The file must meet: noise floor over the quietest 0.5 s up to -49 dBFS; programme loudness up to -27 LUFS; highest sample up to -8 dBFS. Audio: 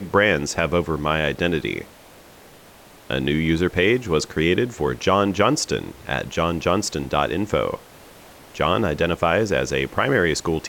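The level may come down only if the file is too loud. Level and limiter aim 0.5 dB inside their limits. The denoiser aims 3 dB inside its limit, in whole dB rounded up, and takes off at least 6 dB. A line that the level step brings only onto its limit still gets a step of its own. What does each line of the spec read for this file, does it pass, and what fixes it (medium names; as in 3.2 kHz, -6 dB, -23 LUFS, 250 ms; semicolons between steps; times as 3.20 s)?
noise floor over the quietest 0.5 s -47 dBFS: fail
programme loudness -21.5 LUFS: fail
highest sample -5.5 dBFS: fail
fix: trim -6 dB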